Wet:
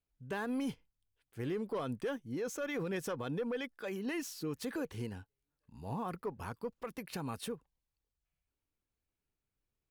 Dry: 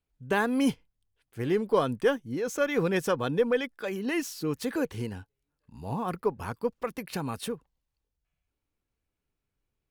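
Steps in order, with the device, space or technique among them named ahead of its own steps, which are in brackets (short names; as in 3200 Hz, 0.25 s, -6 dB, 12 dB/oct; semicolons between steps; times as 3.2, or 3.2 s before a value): soft clipper into limiter (soft clip -17 dBFS, distortion -19 dB; limiter -24 dBFS, peak gain reduction 6.5 dB); gain -6 dB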